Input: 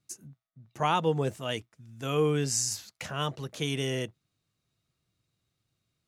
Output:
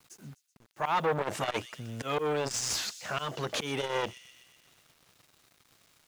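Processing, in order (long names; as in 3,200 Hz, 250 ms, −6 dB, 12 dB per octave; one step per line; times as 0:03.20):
volume swells 560 ms
in parallel at −1.5 dB: downward compressor, threshold −43 dBFS, peak gain reduction 15 dB
on the sum: mid-hump overdrive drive 23 dB, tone 2,100 Hz, clips at −16.5 dBFS
bit reduction 10 bits
delay with a high-pass on its return 126 ms, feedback 63%, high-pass 3,500 Hz, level −15.5 dB
saturating transformer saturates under 1,200 Hz
level +2.5 dB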